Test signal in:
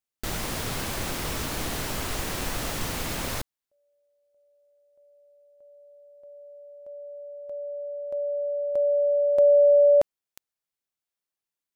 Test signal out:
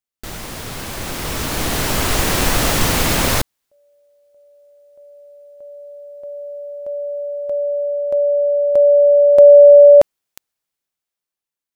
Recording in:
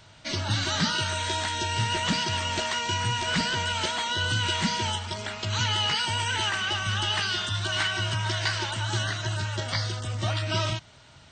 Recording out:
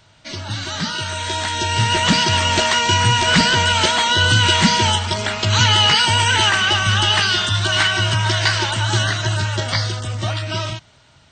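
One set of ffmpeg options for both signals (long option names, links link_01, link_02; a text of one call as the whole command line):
ffmpeg -i in.wav -af "dynaudnorm=framelen=250:gausssize=13:maxgain=16dB" out.wav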